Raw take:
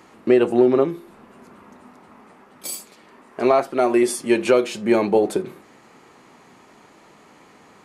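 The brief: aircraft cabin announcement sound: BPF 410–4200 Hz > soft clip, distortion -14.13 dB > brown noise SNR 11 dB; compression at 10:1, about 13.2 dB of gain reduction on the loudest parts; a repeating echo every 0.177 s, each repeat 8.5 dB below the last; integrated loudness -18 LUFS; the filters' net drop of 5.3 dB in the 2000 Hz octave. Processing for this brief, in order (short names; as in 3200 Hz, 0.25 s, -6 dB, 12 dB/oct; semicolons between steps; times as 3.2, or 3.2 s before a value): bell 2000 Hz -6.5 dB; compressor 10:1, threshold -25 dBFS; BPF 410–4200 Hz; feedback echo 0.177 s, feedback 38%, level -8.5 dB; soft clip -27 dBFS; brown noise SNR 11 dB; gain +18.5 dB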